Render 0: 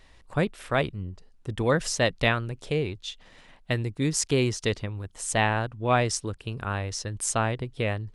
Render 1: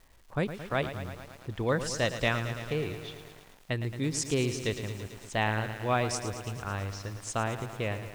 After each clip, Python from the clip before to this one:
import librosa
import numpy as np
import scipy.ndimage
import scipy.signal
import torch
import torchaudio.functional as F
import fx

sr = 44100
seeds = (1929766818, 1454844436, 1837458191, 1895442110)

y = fx.env_lowpass(x, sr, base_hz=1600.0, full_db=-21.0)
y = fx.dmg_crackle(y, sr, seeds[0], per_s=590.0, level_db=-46.0)
y = fx.echo_crushed(y, sr, ms=111, feedback_pct=80, bits=7, wet_db=-10.5)
y = y * librosa.db_to_amplitude(-5.0)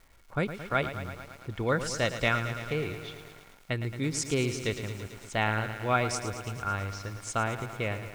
y = fx.small_body(x, sr, hz=(1400.0, 2200.0), ring_ms=45, db=12)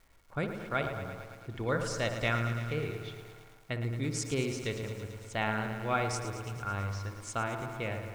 y = fx.echo_wet_lowpass(x, sr, ms=60, feedback_pct=72, hz=1300.0, wet_db=-7.0)
y = y * librosa.db_to_amplitude(-4.5)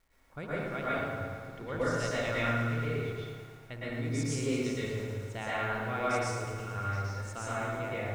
y = fx.rev_plate(x, sr, seeds[1], rt60_s=1.3, hf_ratio=0.55, predelay_ms=100, drr_db=-8.5)
y = y * librosa.db_to_amplitude(-8.5)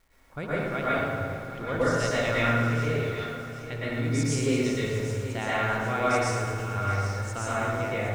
y = fx.echo_feedback(x, sr, ms=767, feedback_pct=42, wet_db=-12.5)
y = y * librosa.db_to_amplitude(6.0)